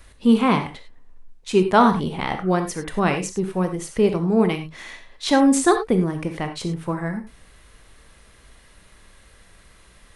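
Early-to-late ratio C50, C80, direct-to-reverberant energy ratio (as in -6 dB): 9.0 dB, 13.0 dB, 6.5 dB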